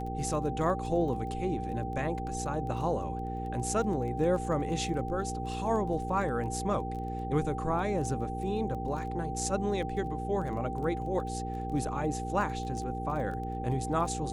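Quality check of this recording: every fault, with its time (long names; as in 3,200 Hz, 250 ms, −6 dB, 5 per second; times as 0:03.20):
surface crackle 14 per second −38 dBFS
mains hum 60 Hz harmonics 8 −37 dBFS
whistle 780 Hz −37 dBFS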